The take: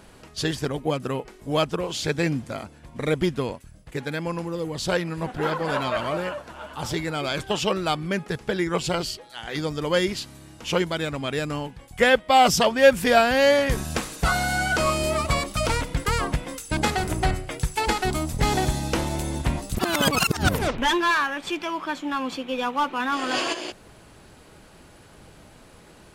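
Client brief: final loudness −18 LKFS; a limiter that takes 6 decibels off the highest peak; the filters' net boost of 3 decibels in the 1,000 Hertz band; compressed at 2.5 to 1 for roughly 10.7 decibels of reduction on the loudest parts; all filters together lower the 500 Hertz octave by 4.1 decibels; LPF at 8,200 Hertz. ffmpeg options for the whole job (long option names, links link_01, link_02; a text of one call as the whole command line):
ffmpeg -i in.wav -af "lowpass=8200,equalizer=frequency=500:width_type=o:gain=-7,equalizer=frequency=1000:width_type=o:gain=6.5,acompressor=threshold=-28dB:ratio=2.5,volume=13.5dB,alimiter=limit=-6.5dB:level=0:latency=1" out.wav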